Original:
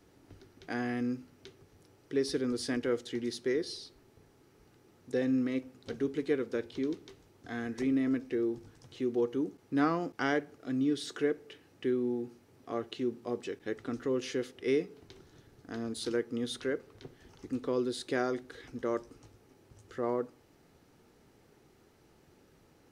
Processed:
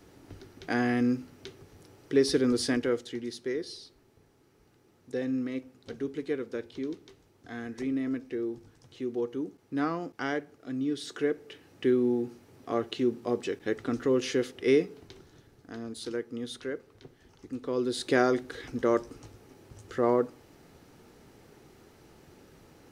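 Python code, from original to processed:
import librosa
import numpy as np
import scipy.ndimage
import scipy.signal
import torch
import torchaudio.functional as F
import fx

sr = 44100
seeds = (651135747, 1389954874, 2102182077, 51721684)

y = fx.gain(x, sr, db=fx.line((2.6, 7.0), (3.23, -1.5), (10.8, -1.5), (11.87, 6.0), (14.81, 6.0), (15.81, -2.0), (17.59, -2.0), (18.09, 7.5)))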